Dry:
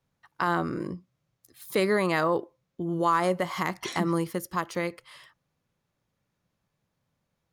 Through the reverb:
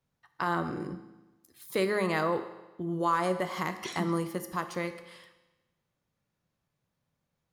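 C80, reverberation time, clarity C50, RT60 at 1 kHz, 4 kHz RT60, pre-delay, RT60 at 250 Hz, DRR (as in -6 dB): 13.5 dB, 1.1 s, 11.5 dB, 1.1 s, 1.0 s, 9 ms, 1.1 s, 8.5 dB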